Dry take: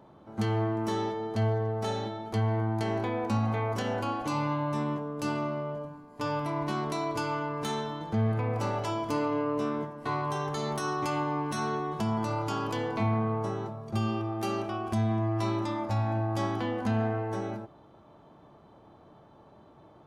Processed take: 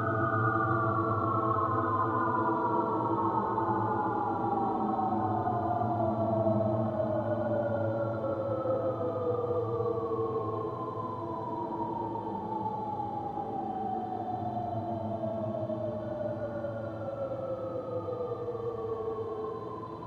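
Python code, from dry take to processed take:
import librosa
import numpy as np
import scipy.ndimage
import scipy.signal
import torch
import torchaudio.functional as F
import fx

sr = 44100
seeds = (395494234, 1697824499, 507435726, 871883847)

y = fx.spec_paint(x, sr, seeds[0], shape='fall', start_s=18.22, length_s=0.82, low_hz=430.0, high_hz=1500.0, level_db=-40.0)
y = fx.echo_split(y, sr, split_hz=1000.0, low_ms=592, high_ms=113, feedback_pct=52, wet_db=-3.5)
y = fx.paulstretch(y, sr, seeds[1], factor=15.0, window_s=0.1, from_s=18.33)
y = y * 10.0 ** (7.0 / 20.0)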